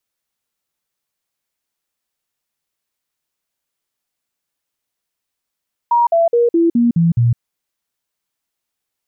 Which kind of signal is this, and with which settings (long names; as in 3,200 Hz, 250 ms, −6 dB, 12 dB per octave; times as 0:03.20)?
stepped sweep 948 Hz down, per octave 2, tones 7, 0.16 s, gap 0.05 s −9.5 dBFS